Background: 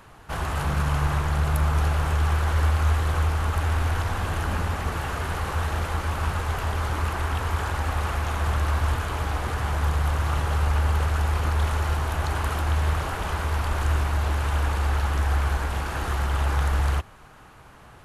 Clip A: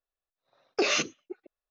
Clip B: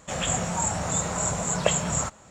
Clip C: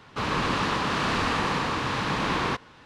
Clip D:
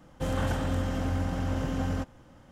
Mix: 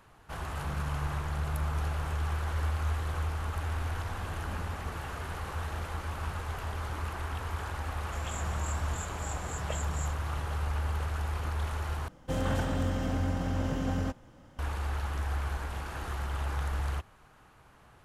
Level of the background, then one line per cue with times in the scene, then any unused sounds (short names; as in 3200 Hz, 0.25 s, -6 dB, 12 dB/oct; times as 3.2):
background -9.5 dB
8.04 add B -16 dB
12.08 replace with D -1 dB
not used: A, C